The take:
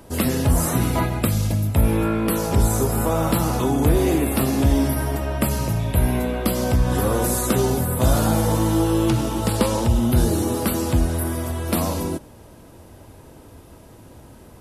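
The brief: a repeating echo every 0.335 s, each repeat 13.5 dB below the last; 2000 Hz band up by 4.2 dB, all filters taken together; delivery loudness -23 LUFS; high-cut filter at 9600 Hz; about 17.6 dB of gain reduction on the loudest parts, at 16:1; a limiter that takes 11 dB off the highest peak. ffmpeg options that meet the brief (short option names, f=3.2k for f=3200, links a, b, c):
-af "lowpass=9.6k,equalizer=f=2k:t=o:g=5.5,acompressor=threshold=-30dB:ratio=16,alimiter=level_in=5dB:limit=-24dB:level=0:latency=1,volume=-5dB,aecho=1:1:335|670:0.211|0.0444,volume=15.5dB"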